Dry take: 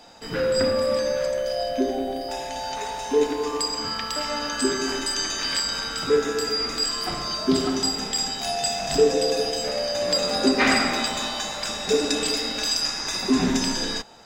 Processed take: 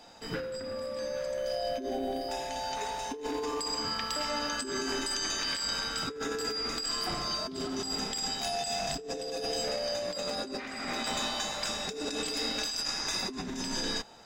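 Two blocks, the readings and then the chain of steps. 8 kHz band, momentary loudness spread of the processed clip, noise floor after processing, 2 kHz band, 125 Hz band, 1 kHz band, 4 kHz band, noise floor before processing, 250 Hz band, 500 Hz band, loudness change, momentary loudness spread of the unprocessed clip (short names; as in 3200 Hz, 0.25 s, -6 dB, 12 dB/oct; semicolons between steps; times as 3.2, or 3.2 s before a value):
-7.5 dB, 5 LU, -41 dBFS, -9.0 dB, -9.0 dB, -7.0 dB, -7.5 dB, -32 dBFS, -12.0 dB, -11.0 dB, -9.0 dB, 7 LU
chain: negative-ratio compressor -27 dBFS, ratio -1; gain -7 dB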